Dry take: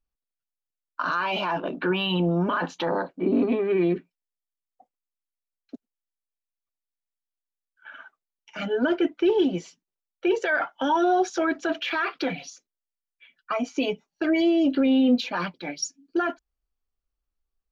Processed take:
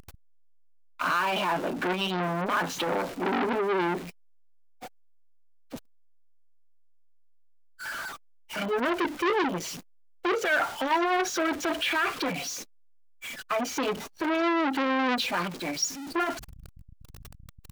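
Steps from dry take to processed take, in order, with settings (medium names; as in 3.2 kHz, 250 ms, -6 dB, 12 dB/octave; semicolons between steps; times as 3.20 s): jump at every zero crossing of -32 dBFS; transformer saturation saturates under 1.7 kHz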